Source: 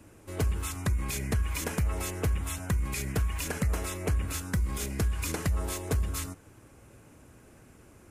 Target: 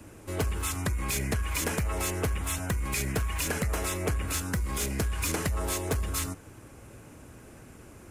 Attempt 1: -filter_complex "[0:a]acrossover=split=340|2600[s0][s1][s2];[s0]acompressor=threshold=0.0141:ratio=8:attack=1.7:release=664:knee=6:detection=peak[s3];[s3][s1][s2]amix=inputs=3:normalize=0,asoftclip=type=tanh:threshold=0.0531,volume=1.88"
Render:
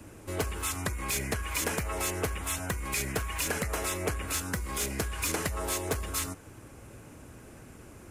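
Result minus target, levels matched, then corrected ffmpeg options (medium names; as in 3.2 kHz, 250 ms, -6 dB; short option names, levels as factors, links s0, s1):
compression: peak gain reduction +6.5 dB
-filter_complex "[0:a]acrossover=split=340|2600[s0][s1][s2];[s0]acompressor=threshold=0.0335:ratio=8:attack=1.7:release=664:knee=6:detection=peak[s3];[s3][s1][s2]amix=inputs=3:normalize=0,asoftclip=type=tanh:threshold=0.0531,volume=1.88"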